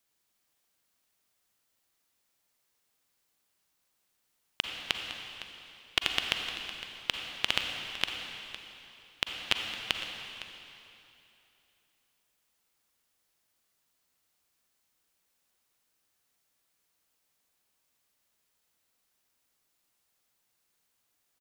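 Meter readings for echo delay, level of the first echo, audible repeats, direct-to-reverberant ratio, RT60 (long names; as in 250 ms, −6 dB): 509 ms, −14.0 dB, 1, 2.5 dB, 2.8 s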